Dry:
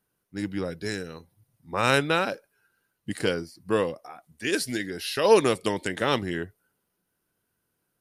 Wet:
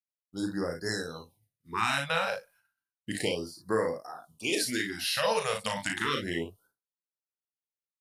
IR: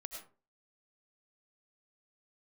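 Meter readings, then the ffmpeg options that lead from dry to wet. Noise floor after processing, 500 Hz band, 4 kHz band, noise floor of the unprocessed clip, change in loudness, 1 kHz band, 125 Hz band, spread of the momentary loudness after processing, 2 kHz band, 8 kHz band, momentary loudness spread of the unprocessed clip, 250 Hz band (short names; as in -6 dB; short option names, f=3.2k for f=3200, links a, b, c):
under -85 dBFS, -7.0 dB, -1.0 dB, -78 dBFS, -4.5 dB, -4.0 dB, -6.5 dB, 12 LU, -2.5 dB, 0.0 dB, 18 LU, -5.5 dB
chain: -filter_complex "[0:a]lowshelf=f=440:g=-7.5,acompressor=threshold=-26dB:ratio=4,asplit=2[a][b];[b]aecho=0:1:36|56:0.562|0.398[c];[a][c]amix=inputs=2:normalize=0,agate=range=-33dB:threshold=-57dB:ratio=3:detection=peak,afftfilt=real='re*(1-between(b*sr/1024,300*pow(3000/300,0.5+0.5*sin(2*PI*0.32*pts/sr))/1.41,300*pow(3000/300,0.5+0.5*sin(2*PI*0.32*pts/sr))*1.41))':imag='im*(1-between(b*sr/1024,300*pow(3000/300,0.5+0.5*sin(2*PI*0.32*pts/sr))/1.41,300*pow(3000/300,0.5+0.5*sin(2*PI*0.32*pts/sr))*1.41))':win_size=1024:overlap=0.75,volume=1dB"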